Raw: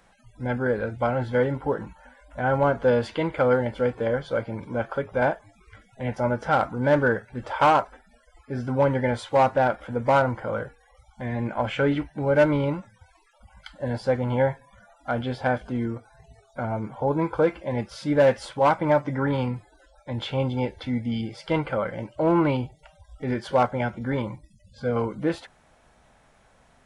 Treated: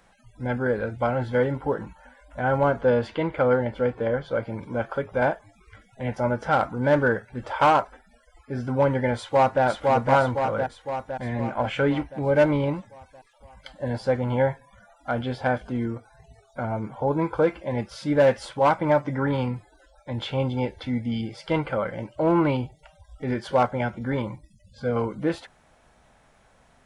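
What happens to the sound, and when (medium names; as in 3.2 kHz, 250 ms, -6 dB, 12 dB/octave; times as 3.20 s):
2.81–4.43 s: treble shelf 5.4 kHz -10.5 dB
9.16–9.64 s: echo throw 510 ms, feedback 60%, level -2 dB
12.05–13.95 s: band-stop 1.4 kHz, Q 9.6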